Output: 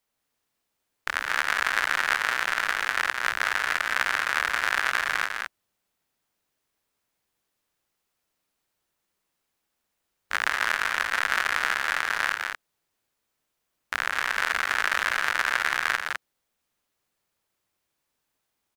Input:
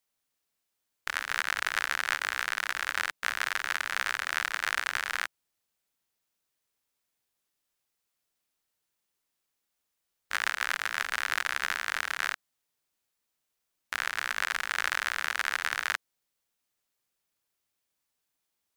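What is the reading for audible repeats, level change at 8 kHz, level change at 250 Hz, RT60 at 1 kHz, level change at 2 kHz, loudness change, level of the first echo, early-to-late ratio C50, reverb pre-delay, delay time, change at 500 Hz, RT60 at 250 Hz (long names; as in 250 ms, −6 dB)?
2, +1.5 dB, +8.0 dB, no reverb audible, +5.5 dB, +5.0 dB, −9.0 dB, no reverb audible, no reverb audible, 168 ms, +7.5 dB, no reverb audible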